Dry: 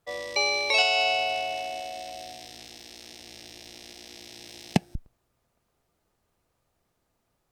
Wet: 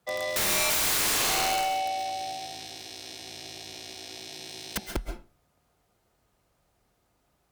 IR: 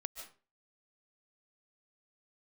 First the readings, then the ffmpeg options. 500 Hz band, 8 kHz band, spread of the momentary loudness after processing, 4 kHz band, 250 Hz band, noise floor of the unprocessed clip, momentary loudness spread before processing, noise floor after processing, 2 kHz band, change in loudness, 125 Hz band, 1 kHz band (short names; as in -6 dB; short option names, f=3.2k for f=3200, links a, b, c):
-2.5 dB, +11.5 dB, 17 LU, -1.5 dB, -5.0 dB, -76 dBFS, 23 LU, -72 dBFS, -3.5 dB, -1.0 dB, -5.5 dB, +0.5 dB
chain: -filter_complex "[0:a]afreqshift=28,aeval=exprs='(mod(16.8*val(0)+1,2)-1)/16.8':c=same[a];[1:a]atrim=start_sample=2205,asetrate=48510,aresample=44100[b];[a][b]afir=irnorm=-1:irlink=0,volume=7dB"